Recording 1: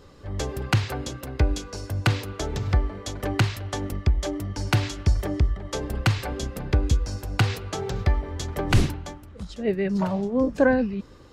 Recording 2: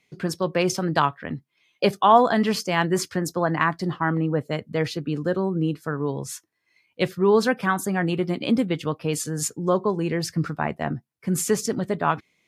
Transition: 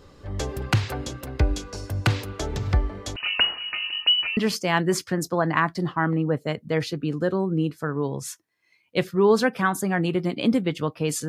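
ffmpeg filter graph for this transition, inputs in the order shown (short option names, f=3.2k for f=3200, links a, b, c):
-filter_complex "[0:a]asettb=1/sr,asplit=3[a][b][c];[a]atrim=end=3.164[d];[b]atrim=start=3.16:end=4.37,asetpts=PTS-STARTPTS,afade=t=in:d=0.004:c=qsin,afade=t=out:st=1.206:d=0.004:c=qsin,lowpass=f=2.6k:t=q:w=0.5098,lowpass=f=2.6k:t=q:w=0.6013,lowpass=f=2.6k:t=q:w=0.9,lowpass=f=2.6k:t=q:w=2.563,afreqshift=-3000[e];[c]atrim=start=4.366[f];[d][e]acrossfade=d=0.004:c1=hsin:c2=qsin[g];[g][f]acrossfade=d=0.004:c1=qsin:c2=hsin,apad=whole_dur=11.28,atrim=end=11.28,atrim=end=4.372[h];[1:a]atrim=start=2.408:end=9.32[i];[h][i]acrossfade=d=0.004:c1=hsin:c2=hsin"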